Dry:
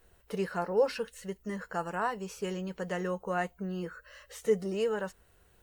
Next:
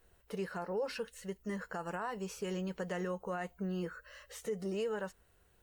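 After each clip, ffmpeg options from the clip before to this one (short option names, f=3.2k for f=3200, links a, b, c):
-af "dynaudnorm=f=250:g=11:m=3dB,alimiter=level_in=0.5dB:limit=-24dB:level=0:latency=1:release=111,volume=-0.5dB,volume=-4dB"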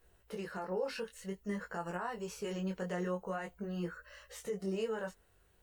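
-af "flanger=delay=17:depth=5.4:speed=0.5,volume=2.5dB"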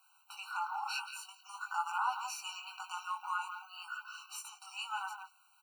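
-filter_complex "[0:a]asplit=2[a][b];[b]adelay=170,highpass=300,lowpass=3.4k,asoftclip=type=hard:threshold=-34.5dB,volume=-7dB[c];[a][c]amix=inputs=2:normalize=0,afftfilt=real='re*eq(mod(floor(b*sr/1024/770),2),1)':imag='im*eq(mod(floor(b*sr/1024/770),2),1)':win_size=1024:overlap=0.75,volume=8.5dB"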